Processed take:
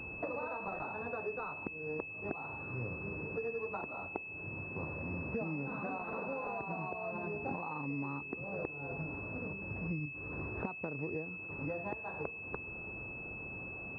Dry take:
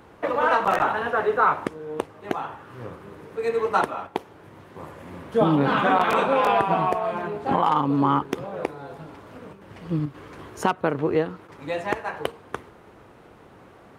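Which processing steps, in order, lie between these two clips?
low-shelf EQ 230 Hz +9.5 dB
downward compressor 12 to 1, threshold −33 dBFS, peak gain reduction 21 dB
switching amplifier with a slow clock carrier 2,600 Hz
level −3 dB

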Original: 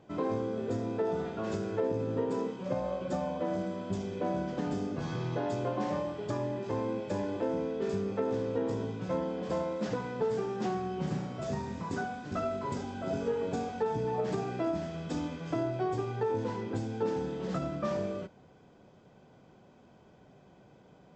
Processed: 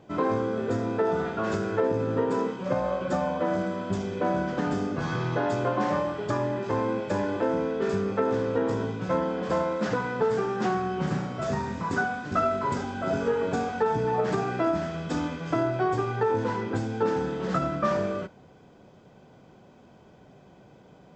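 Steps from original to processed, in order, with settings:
dynamic equaliser 1,400 Hz, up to +8 dB, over −53 dBFS, Q 1.3
level +5 dB

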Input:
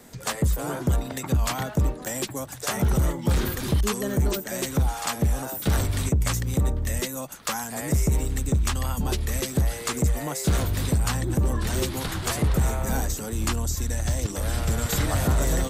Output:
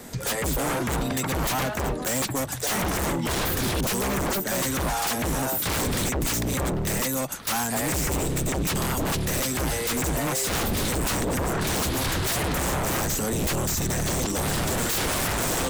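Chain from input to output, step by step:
wave folding −28 dBFS
level +7.5 dB

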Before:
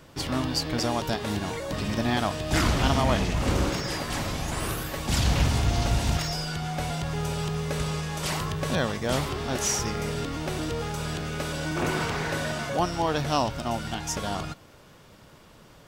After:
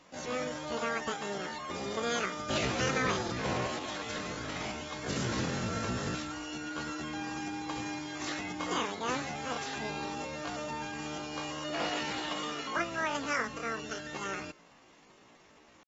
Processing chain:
low-shelf EQ 81 Hz −11 dB
pitch shifter +11.5 semitones
level −7 dB
AAC 24 kbit/s 44,100 Hz

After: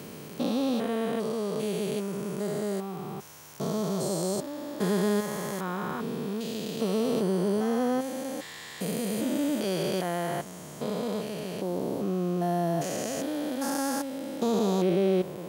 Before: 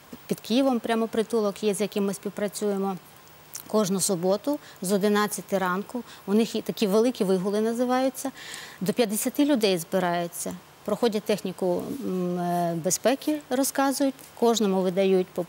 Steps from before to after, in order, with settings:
spectrum averaged block by block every 400 ms
harmonic generator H 2 −32 dB, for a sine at −14.5 dBFS

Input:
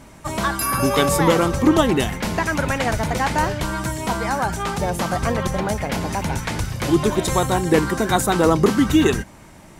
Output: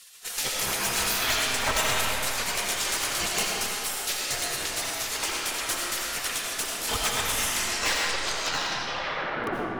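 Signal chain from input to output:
turntable brake at the end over 2.74 s
reverb reduction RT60 1.3 s
hum removal 118 Hz, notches 29
gate on every frequency bin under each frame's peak −25 dB weak
tube saturation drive 30 dB, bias 0.65
in parallel at −7.5 dB: wrap-around overflow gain 29.5 dB
on the sum: echo ahead of the sound 31 ms −17 dB
comb and all-pass reverb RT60 2.8 s, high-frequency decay 0.65×, pre-delay 45 ms, DRR −3 dB
level +8.5 dB

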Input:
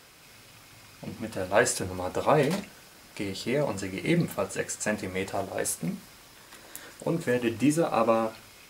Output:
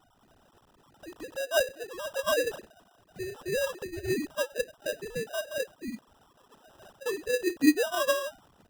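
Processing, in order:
three sine waves on the formant tracks
in parallel at −2.5 dB: downward compressor, threshold −37 dBFS, peak gain reduction 23 dB
on the sum: sample-rate reduction 2,200 Hz, jitter 0%
level −4 dB

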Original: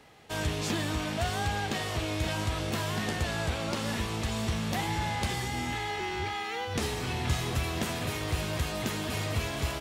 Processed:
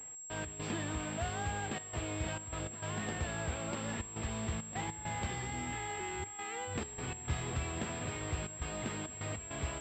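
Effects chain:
reversed playback
upward compression, threshold −43 dBFS
reversed playback
gate pattern "x.x.xxxxxxxx.xx" 101 BPM −12 dB
switching amplifier with a slow clock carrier 7,600 Hz
level −6.5 dB

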